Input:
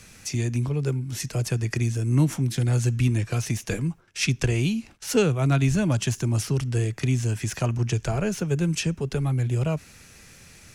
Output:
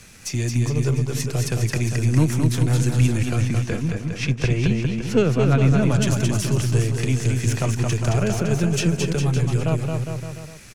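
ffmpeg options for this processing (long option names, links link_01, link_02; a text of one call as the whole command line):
ffmpeg -i in.wav -filter_complex "[0:a]aeval=exprs='if(lt(val(0),0),0.708*val(0),val(0))':channel_layout=same,asettb=1/sr,asplit=3[link_01][link_02][link_03];[link_01]atrim=end=3.364[link_04];[link_02]atrim=start=3.36:end=5.83,asetpts=PTS-STARTPTS,afade=type=in:duration=0.004:curve=qsin,afade=type=out:start_time=2.466:duration=0.004:curve=qsin,aemphasis=mode=reproduction:type=75kf[link_05];[link_03]atrim=start=5.826[link_06];[link_04][link_05]acrossfade=duration=0.004:curve1=hsin:curve2=qsin[link_07];[link_07][link_06]acrossfade=duration=0.004:curve1=qsin:curve2=hsin,aecho=1:1:220|407|566|701.1|815.9:0.631|0.398|0.251|0.158|0.1,volume=3.5dB" out.wav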